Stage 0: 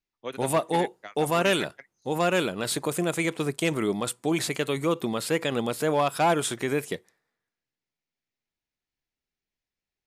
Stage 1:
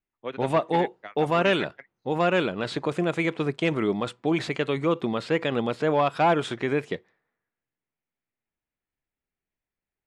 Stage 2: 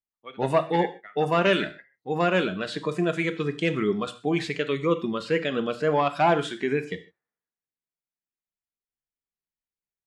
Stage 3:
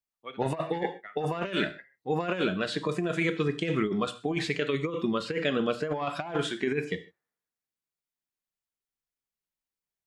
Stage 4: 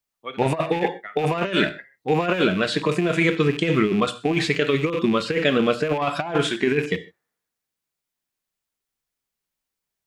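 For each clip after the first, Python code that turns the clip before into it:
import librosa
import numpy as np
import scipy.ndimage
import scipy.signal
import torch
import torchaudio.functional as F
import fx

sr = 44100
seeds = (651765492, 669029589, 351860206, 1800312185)

y1 = scipy.signal.sosfilt(scipy.signal.butter(2, 3300.0, 'lowpass', fs=sr, output='sos'), x)
y1 = fx.env_lowpass(y1, sr, base_hz=2500.0, full_db=-23.5)
y1 = y1 * librosa.db_to_amplitude(1.5)
y2 = fx.noise_reduce_blind(y1, sr, reduce_db=13)
y2 = fx.rev_gated(y2, sr, seeds[0], gate_ms=170, shape='falling', drr_db=9.5)
y3 = fx.over_compress(y2, sr, threshold_db=-25.0, ratio=-0.5)
y3 = y3 * librosa.db_to_amplitude(-2.0)
y4 = fx.rattle_buzz(y3, sr, strikes_db=-42.0, level_db=-32.0)
y4 = y4 * librosa.db_to_amplitude(8.0)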